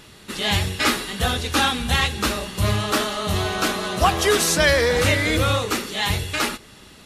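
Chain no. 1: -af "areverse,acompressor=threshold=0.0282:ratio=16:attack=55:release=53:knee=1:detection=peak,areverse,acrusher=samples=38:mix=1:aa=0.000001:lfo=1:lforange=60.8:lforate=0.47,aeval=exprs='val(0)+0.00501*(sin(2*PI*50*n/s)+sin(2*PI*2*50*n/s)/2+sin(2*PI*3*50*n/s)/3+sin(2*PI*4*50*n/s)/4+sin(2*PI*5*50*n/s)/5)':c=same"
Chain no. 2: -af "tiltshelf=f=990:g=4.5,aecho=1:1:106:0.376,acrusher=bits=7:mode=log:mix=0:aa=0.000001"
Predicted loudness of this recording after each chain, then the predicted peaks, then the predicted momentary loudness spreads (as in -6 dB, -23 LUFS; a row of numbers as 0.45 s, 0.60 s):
-29.5 LUFS, -19.5 LUFS; -17.5 dBFS, -4.0 dBFS; 3 LU, 7 LU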